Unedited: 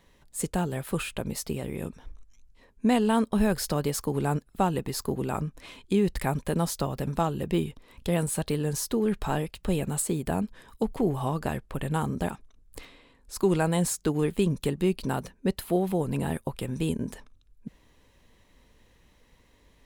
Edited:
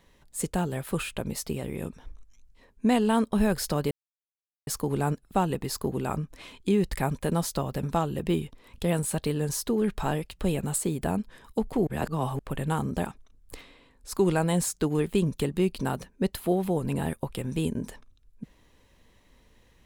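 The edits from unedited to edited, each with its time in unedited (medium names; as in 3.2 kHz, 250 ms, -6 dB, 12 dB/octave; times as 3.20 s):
3.91 s: insert silence 0.76 s
11.11–11.63 s: reverse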